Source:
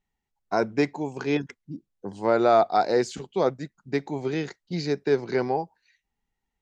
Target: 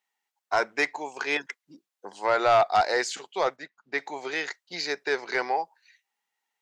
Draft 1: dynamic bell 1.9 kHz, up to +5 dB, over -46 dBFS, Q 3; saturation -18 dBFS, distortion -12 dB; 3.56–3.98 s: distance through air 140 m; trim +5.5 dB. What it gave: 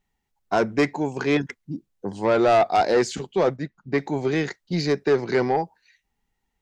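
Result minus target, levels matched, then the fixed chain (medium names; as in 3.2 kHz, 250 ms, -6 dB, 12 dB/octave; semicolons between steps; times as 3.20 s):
1 kHz band -3.0 dB
dynamic bell 1.9 kHz, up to +5 dB, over -46 dBFS, Q 3; high-pass 810 Hz 12 dB/octave; saturation -18 dBFS, distortion -16 dB; 3.56–3.98 s: distance through air 140 m; trim +5.5 dB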